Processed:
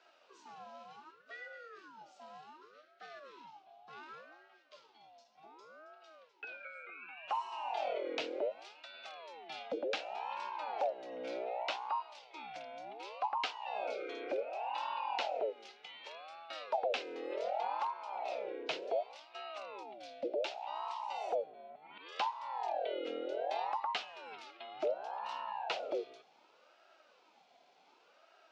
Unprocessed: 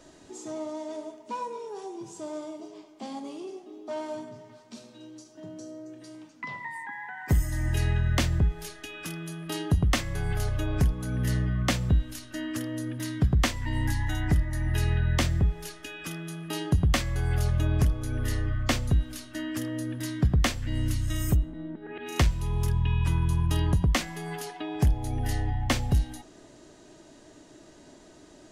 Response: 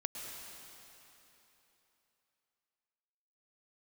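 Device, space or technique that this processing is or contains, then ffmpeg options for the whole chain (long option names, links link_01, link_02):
voice changer toy: -filter_complex "[0:a]asettb=1/sr,asplit=3[link_01][link_02][link_03];[link_01]atrim=end=19.834[link_04];[link_02]atrim=start=19.83:end=20.52,asetpts=PTS-STARTPTS,afade=type=in:duration=0.004:curve=qsin,afade=type=out:start_time=0.686:duration=0.004:curve=qsin,equalizer=frequency=920:width=0.71:gain=-13[link_05];[link_03]atrim=start=20.516[link_06];[link_04][link_05]acrossfade=duration=0.004:curve1=hsin:curve2=qsin[link_07];[link_07][link_06]acrossfade=duration=0.004:curve1=qsin:curve2=hsin,aeval=exprs='val(0)*sin(2*PI*690*n/s+690*0.45/0.67*sin(2*PI*0.67*n/s))':channel_layout=same,highpass=frequency=110:width=0.5412,highpass=frequency=110:width=1.3066,highpass=580,equalizer=frequency=1100:width_type=q:width=4:gain=-10,equalizer=frequency=1800:width_type=q:width=4:gain=-5,equalizer=frequency=2700:width_type=q:width=4:gain=4,lowpass=frequency=4600:width=0.5412,lowpass=frequency=4600:width=1.3066,volume=-6dB"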